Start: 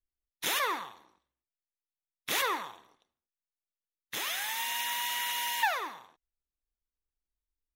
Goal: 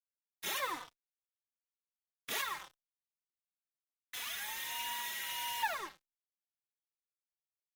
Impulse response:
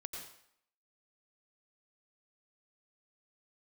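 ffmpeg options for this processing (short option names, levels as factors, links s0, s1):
-filter_complex "[0:a]asettb=1/sr,asplit=3[s0][s1][s2];[s0]atrim=end=2.414[s3];[s1]atrim=start=2.41:end=4.48,asetpts=PTS-STARTPTS,afade=t=in:d=0.004:c=qsin,afade=t=out:st=2.066:d=0.004:c=qsin,highpass=920[s4];[s2]atrim=start=4.476[s5];[s3][s4]acrossfade=d=0.004:c1=hsin:c2=qsin[s6];[s6][s5]acrossfade=d=0.004:c1=qsin:c2=hsin,acrusher=bits=5:mix=0:aa=0.5,asplit=2[s7][s8];[s8]adelay=3.4,afreqshift=-1.5[s9];[s7][s9]amix=inputs=2:normalize=1,volume=0.631"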